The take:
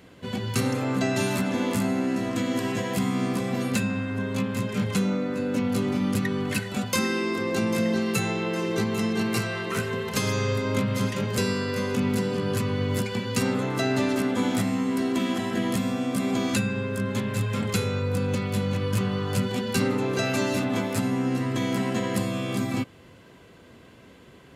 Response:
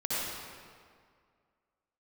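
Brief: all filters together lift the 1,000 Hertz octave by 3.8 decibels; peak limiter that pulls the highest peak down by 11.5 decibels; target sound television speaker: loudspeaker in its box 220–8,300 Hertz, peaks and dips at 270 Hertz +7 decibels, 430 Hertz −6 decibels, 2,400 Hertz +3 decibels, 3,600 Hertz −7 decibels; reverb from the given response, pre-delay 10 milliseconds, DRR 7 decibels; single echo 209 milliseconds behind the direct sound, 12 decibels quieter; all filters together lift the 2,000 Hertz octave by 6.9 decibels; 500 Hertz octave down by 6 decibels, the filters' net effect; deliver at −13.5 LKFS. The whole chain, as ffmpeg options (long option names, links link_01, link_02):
-filter_complex "[0:a]equalizer=frequency=500:width_type=o:gain=-6.5,equalizer=frequency=1000:width_type=o:gain=4.5,equalizer=frequency=2000:width_type=o:gain=7,alimiter=limit=-21dB:level=0:latency=1,aecho=1:1:209:0.251,asplit=2[link_01][link_02];[1:a]atrim=start_sample=2205,adelay=10[link_03];[link_02][link_03]afir=irnorm=-1:irlink=0,volume=-15dB[link_04];[link_01][link_04]amix=inputs=2:normalize=0,highpass=frequency=220:width=0.5412,highpass=frequency=220:width=1.3066,equalizer=frequency=270:width_type=q:width=4:gain=7,equalizer=frequency=430:width_type=q:width=4:gain=-6,equalizer=frequency=2400:width_type=q:width=4:gain=3,equalizer=frequency=3600:width_type=q:width=4:gain=-7,lowpass=frequency=8300:width=0.5412,lowpass=frequency=8300:width=1.3066,volume=15.5dB"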